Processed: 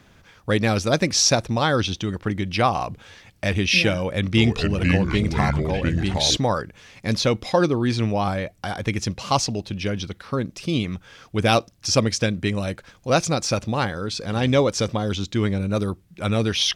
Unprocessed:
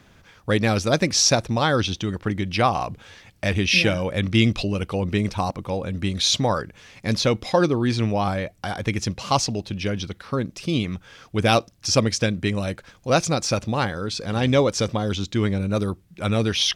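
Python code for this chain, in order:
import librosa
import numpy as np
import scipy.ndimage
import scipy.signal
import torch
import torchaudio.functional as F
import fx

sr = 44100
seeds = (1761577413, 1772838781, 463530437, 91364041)

y = fx.echo_pitch(x, sr, ms=399, semitones=-4, count=2, db_per_echo=-3.0, at=(3.97, 6.37))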